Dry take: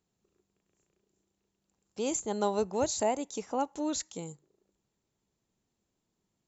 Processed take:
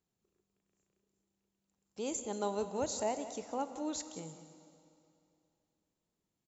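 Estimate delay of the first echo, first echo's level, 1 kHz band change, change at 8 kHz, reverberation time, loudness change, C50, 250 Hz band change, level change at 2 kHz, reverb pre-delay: 0.184 s, -14.5 dB, -5.5 dB, n/a, 2.7 s, -6.0 dB, 10.0 dB, -5.5 dB, -5.5 dB, 23 ms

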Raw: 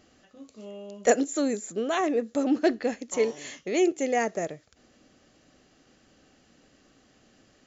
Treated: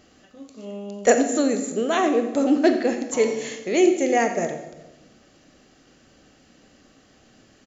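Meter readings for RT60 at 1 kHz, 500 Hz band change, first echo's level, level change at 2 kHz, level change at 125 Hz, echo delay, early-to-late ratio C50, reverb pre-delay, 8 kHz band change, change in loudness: 1.0 s, +5.5 dB, -14.5 dB, +5.5 dB, +6.5 dB, 89 ms, 8.0 dB, 19 ms, n/a, +5.5 dB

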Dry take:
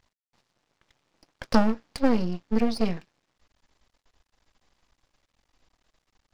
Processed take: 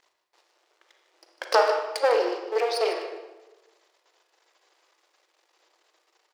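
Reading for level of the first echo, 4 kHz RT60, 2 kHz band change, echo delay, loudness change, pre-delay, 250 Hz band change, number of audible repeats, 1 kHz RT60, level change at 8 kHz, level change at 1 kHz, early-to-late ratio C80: -12.0 dB, 0.80 s, +6.5 dB, 0.152 s, +1.5 dB, 33 ms, -17.0 dB, 1, 1.1 s, +5.5 dB, +6.5 dB, 7.0 dB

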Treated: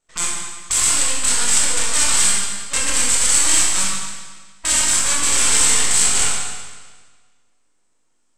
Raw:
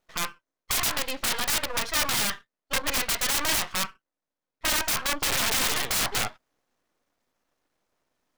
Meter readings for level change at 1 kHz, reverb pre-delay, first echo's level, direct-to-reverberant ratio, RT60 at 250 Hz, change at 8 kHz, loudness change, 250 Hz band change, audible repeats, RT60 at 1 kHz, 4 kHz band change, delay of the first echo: +3.5 dB, 20 ms, none, -4.5 dB, 1.5 s, +15.5 dB, +10.0 dB, +4.5 dB, none, 1.5 s, +6.0 dB, none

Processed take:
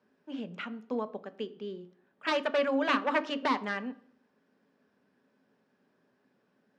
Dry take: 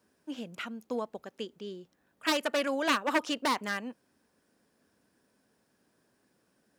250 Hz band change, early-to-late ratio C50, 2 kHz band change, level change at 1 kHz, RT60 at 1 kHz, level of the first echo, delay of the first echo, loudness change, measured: +1.0 dB, 18.0 dB, -0.5 dB, +0.5 dB, 0.55 s, none, none, 0.0 dB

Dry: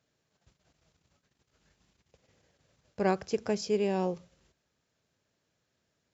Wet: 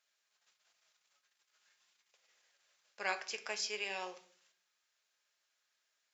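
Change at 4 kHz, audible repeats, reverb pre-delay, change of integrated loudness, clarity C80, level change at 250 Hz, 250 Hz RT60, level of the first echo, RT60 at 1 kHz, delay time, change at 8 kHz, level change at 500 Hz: +2.5 dB, none, 5 ms, -8.0 dB, 18.5 dB, -25.5 dB, 0.65 s, none, 0.45 s, none, n/a, -16.0 dB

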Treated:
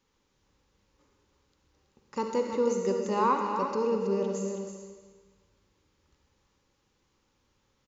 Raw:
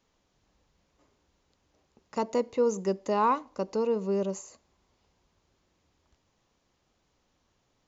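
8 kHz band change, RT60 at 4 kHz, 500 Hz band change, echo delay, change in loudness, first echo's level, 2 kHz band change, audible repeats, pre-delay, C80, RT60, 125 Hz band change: n/a, 1.3 s, 0.0 dB, 0.325 s, 0.0 dB, -7.5 dB, +1.0 dB, 1, 36 ms, 2.5 dB, 1.4 s, n/a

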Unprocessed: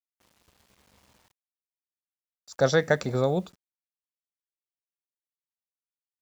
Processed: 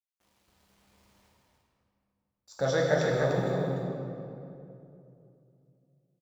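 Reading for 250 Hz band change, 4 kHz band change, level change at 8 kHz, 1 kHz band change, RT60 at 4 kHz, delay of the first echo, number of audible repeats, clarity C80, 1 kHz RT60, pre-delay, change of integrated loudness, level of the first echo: -1.0 dB, -3.0 dB, n/a, -1.5 dB, 1.6 s, 0.296 s, 1, -1.0 dB, 2.5 s, 7 ms, -4.0 dB, -5.0 dB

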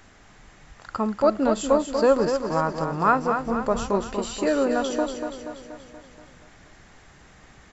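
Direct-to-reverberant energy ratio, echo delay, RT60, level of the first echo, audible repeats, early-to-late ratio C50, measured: none, 0.239 s, none, -7.0 dB, 6, none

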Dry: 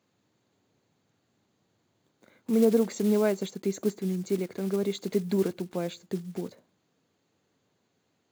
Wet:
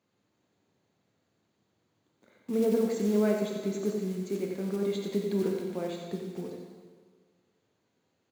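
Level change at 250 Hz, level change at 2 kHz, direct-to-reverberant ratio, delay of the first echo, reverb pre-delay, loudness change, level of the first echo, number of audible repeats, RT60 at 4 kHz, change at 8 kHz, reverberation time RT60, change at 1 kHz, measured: -2.5 dB, -2.0 dB, 0.0 dB, 90 ms, 7 ms, -2.0 dB, -6.5 dB, 1, 1.5 s, -4.5 dB, 1.6 s, -2.0 dB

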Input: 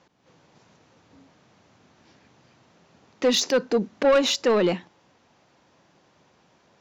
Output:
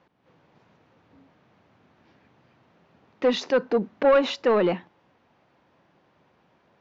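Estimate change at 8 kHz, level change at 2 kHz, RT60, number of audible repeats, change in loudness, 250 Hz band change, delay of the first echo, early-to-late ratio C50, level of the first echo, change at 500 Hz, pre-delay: under -15 dB, -1.0 dB, none, none, -1.0 dB, -1.5 dB, none, none, none, 0.0 dB, none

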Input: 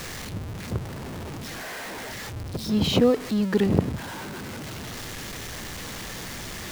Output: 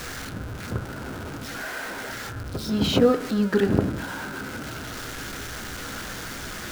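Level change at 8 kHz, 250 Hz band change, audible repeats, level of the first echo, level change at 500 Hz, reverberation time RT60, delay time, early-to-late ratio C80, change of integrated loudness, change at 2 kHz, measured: 0.0 dB, 0.0 dB, none, none, +1.5 dB, 0.75 s, none, 11.5 dB, +0.5 dB, +4.0 dB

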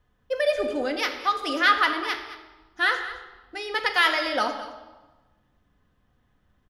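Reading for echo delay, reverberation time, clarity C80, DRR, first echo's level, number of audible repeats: 0.215 s, 1.2 s, 9.0 dB, 3.0 dB, -14.5 dB, 1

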